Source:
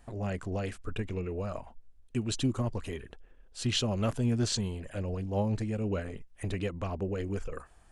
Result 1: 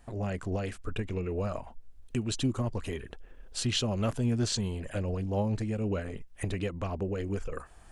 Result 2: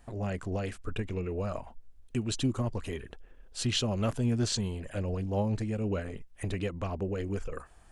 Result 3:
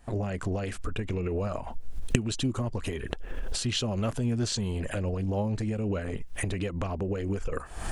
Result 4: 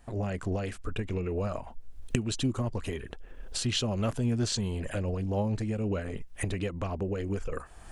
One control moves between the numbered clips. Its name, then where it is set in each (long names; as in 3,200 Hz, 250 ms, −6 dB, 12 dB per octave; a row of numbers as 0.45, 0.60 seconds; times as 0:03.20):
camcorder AGC, rising by: 13, 5.2, 86, 32 dB per second